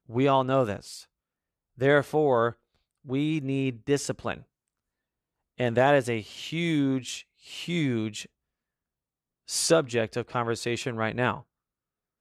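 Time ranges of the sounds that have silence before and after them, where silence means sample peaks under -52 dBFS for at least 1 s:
5.58–8.26

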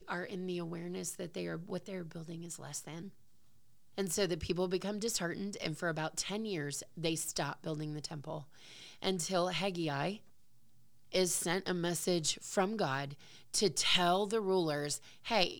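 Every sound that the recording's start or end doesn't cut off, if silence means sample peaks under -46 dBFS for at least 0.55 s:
3.98–10.17

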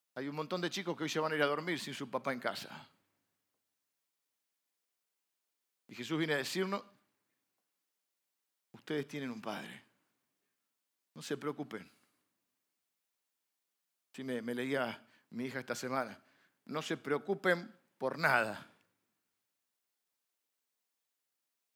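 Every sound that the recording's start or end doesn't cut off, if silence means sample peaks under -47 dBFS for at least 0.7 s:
5.89–6.81
8.75–9.78
11.16–11.83
14.14–18.63

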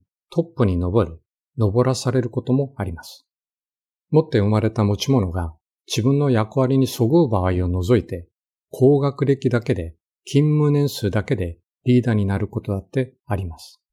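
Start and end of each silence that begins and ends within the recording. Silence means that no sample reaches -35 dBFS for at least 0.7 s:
3.15–4.12

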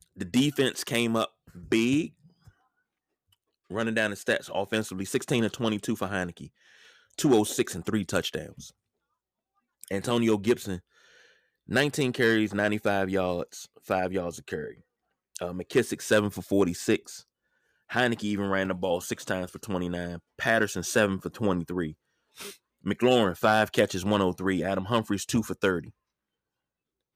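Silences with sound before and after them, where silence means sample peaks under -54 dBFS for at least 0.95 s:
8.71–9.81

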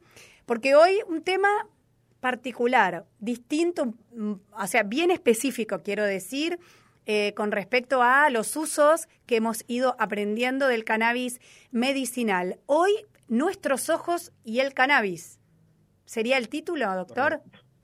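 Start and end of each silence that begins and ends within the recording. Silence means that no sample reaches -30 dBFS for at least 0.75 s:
15.19–16.11

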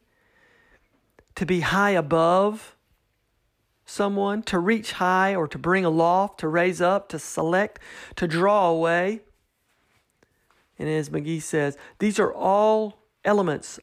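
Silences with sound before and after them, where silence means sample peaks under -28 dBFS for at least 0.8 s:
2.56–3.93
9.16–10.8

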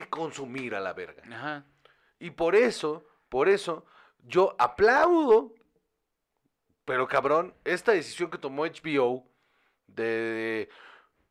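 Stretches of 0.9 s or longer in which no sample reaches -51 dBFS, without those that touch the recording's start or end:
5.61–6.88

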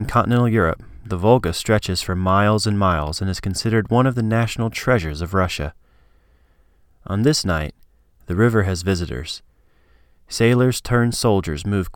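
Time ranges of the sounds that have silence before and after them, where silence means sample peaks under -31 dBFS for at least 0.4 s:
7.06–7.69
8.29–9.37

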